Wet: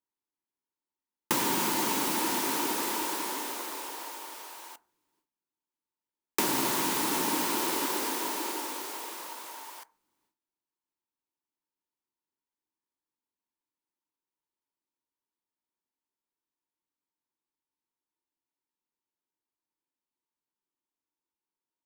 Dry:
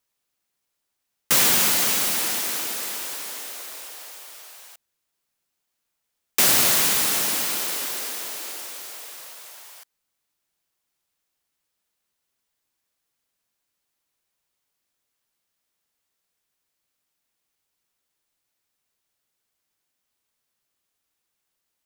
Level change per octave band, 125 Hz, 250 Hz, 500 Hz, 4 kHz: -4.5, +4.0, 0.0, -8.5 dB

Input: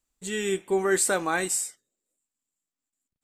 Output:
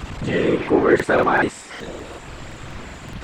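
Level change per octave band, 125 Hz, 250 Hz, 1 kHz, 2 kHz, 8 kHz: +14.0, +11.0, +9.5, +8.0, -13.5 dB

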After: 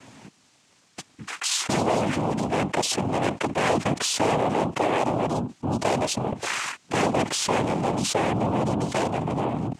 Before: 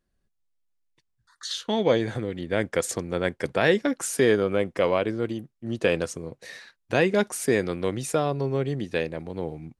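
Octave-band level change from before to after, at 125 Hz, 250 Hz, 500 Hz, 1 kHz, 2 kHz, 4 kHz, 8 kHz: +3.0, +2.0, -2.0, +8.5, -0.5, +5.5, +5.5 dB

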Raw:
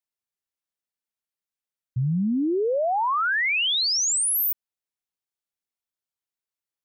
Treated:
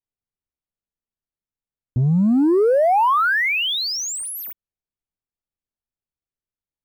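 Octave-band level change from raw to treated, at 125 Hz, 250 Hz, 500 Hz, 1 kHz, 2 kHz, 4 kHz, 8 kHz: +6.5, +7.5, +7.5, +7.0, +4.0, 0.0, -4.0 dB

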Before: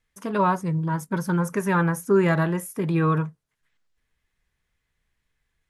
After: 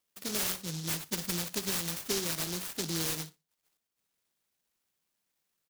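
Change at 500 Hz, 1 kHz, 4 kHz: -16.0, -19.5, +11.5 dB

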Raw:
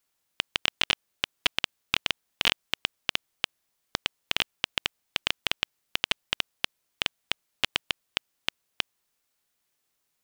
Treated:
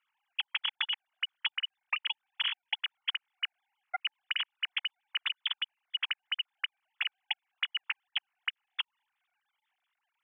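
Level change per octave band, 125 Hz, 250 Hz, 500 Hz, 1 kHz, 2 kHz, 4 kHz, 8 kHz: under -40 dB, under -40 dB, under -15 dB, -6.0 dB, -4.5 dB, -3.5 dB, under -35 dB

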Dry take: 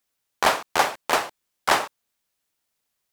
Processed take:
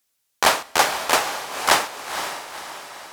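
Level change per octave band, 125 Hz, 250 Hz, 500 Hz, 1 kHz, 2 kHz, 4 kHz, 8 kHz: +2.0, +1.5, +2.0, +2.5, +3.5, +6.0, +8.0 dB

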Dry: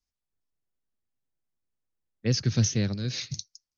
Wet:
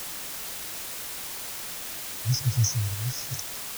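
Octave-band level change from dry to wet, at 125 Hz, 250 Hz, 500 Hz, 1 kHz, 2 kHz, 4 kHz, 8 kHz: +1.0 dB, -10.0 dB, -9.0 dB, +11.0 dB, +3.5 dB, +1.5 dB, n/a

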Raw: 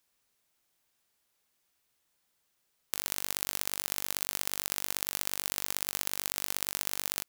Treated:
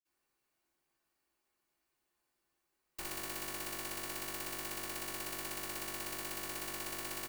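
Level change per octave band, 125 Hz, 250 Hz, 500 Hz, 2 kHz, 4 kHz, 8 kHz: -2.0, +2.0, 0.0, -3.5, -7.5, -8.5 dB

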